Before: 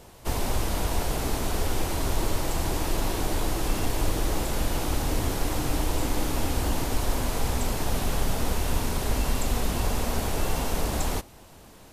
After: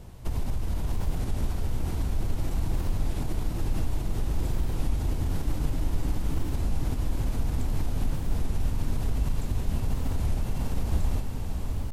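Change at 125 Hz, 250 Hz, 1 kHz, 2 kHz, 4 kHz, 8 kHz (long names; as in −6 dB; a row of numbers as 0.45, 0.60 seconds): +1.5, −4.0, −11.0, −11.5, −12.0, −13.0 decibels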